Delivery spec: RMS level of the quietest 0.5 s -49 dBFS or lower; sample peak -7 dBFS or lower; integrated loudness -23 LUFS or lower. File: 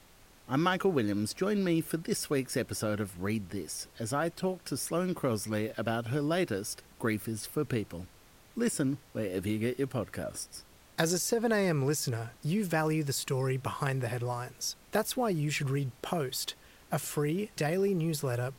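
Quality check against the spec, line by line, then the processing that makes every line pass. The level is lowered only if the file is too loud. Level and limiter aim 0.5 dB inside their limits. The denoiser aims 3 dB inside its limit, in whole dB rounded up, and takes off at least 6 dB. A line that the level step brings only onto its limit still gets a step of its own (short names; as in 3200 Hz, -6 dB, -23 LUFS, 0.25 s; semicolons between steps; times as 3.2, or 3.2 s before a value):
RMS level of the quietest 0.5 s -58 dBFS: OK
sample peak -12.0 dBFS: OK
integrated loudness -32.0 LUFS: OK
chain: none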